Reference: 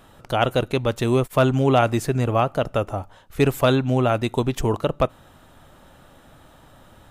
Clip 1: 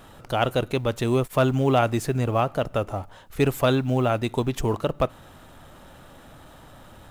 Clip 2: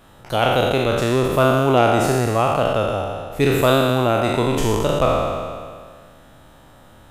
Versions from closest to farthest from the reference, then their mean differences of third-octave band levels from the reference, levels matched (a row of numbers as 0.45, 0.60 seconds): 1, 2; 2.5, 7.0 decibels